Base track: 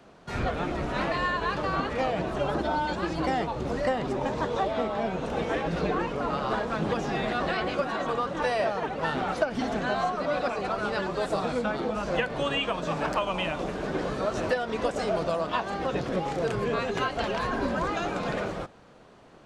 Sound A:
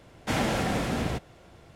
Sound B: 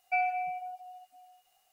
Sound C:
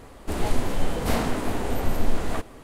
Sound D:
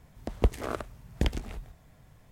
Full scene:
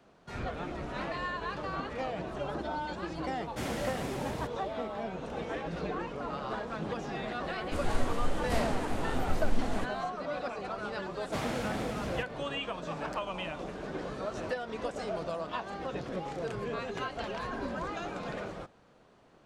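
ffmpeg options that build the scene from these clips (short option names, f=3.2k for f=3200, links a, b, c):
-filter_complex "[1:a]asplit=2[a][b];[0:a]volume=-8dB[c];[a]highshelf=f=7.8k:g=7[d];[3:a]lowpass=9.7k[e];[d]atrim=end=1.75,asetpts=PTS-STARTPTS,volume=-10.5dB,afade=t=in:d=0.004:c=hsin,afade=t=out:st=1.746:d=0.004:c=hsin,adelay=145089S[f];[e]atrim=end=2.63,asetpts=PTS-STARTPTS,volume=-7dB,afade=t=in:d=0.004:c=hsin,afade=t=out:st=2.626:d=0.004:c=hsin,adelay=7440[g];[b]atrim=end=1.75,asetpts=PTS-STARTPTS,volume=-9dB,afade=t=in:d=0.004:c=hsin,afade=t=out:st=1.746:d=0.004:c=hsin,adelay=11050[h];[c][f][g][h]amix=inputs=4:normalize=0"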